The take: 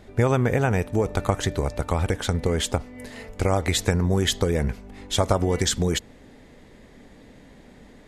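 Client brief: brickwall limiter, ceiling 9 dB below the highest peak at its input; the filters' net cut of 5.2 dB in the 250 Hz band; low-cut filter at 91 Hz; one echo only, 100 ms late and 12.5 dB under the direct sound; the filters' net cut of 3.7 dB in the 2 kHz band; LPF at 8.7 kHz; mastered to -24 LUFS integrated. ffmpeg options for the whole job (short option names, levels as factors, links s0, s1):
-af "highpass=91,lowpass=8700,equalizer=f=250:t=o:g=-7.5,equalizer=f=2000:t=o:g=-4.5,alimiter=limit=0.178:level=0:latency=1,aecho=1:1:100:0.237,volume=1.58"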